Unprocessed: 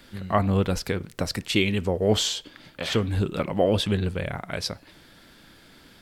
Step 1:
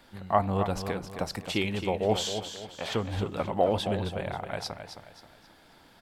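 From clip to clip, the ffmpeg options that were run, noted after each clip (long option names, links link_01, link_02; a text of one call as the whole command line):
ffmpeg -i in.wav -filter_complex "[0:a]equalizer=frequency=820:width_type=o:width=0.89:gain=11,asplit=2[link_01][link_02];[link_02]aecho=0:1:266|532|798|1064:0.355|0.131|0.0486|0.018[link_03];[link_01][link_03]amix=inputs=2:normalize=0,volume=-7.5dB" out.wav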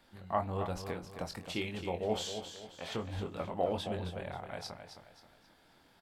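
ffmpeg -i in.wav -filter_complex "[0:a]asplit=2[link_01][link_02];[link_02]adelay=23,volume=-6.5dB[link_03];[link_01][link_03]amix=inputs=2:normalize=0,volume=-8.5dB" out.wav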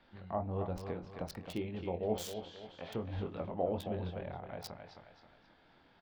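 ffmpeg -i in.wav -filter_complex "[0:a]acrossover=split=770|4500[link_01][link_02][link_03];[link_02]acompressor=threshold=-51dB:ratio=6[link_04];[link_03]acrusher=bits=6:mix=0:aa=0.000001[link_05];[link_01][link_04][link_05]amix=inputs=3:normalize=0" out.wav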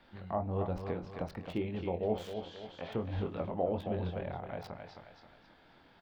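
ffmpeg -i in.wav -filter_complex "[0:a]acrossover=split=3100[link_01][link_02];[link_02]acompressor=threshold=-60dB:ratio=4:attack=1:release=60[link_03];[link_01][link_03]amix=inputs=2:normalize=0,asplit=2[link_04][link_05];[link_05]alimiter=level_in=4dB:limit=-24dB:level=0:latency=1:release=360,volume=-4dB,volume=-2dB[link_06];[link_04][link_06]amix=inputs=2:normalize=0,volume=-1.5dB" out.wav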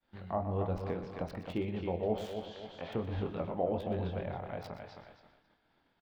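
ffmpeg -i in.wav -filter_complex "[0:a]agate=range=-33dB:threshold=-52dB:ratio=3:detection=peak,asplit=2[link_01][link_02];[link_02]adelay=122.4,volume=-11dB,highshelf=frequency=4000:gain=-2.76[link_03];[link_01][link_03]amix=inputs=2:normalize=0" out.wav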